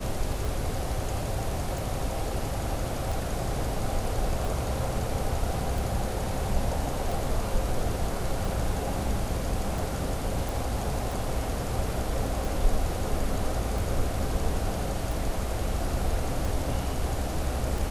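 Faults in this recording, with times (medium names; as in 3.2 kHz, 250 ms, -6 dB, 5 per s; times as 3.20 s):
tick 45 rpm
10.49 s: pop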